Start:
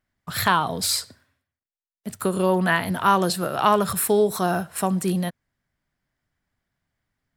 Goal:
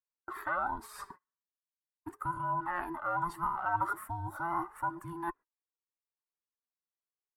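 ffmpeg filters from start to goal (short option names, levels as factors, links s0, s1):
-af "afftfilt=real='real(if(between(b,1,1008),(2*floor((b-1)/24)+1)*24-b,b),0)':imag='imag(if(between(b,1,1008),(2*floor((b-1)/24)+1)*24-b,b),0)*if(between(b,1,1008),-1,1)':win_size=2048:overlap=0.75,agate=range=0.0316:threshold=0.00708:ratio=16:detection=peak,areverse,acompressor=threshold=0.0251:ratio=16,areverse,flanger=delay=1.6:depth=4:regen=43:speed=0.4:shape=triangular,firequalizer=gain_entry='entry(140,0);entry(410,-7);entry(980,11);entry(1400,8);entry(2300,-8);entry(3900,-20);entry(11000,-10)':delay=0.05:min_phase=1,volume=1.19"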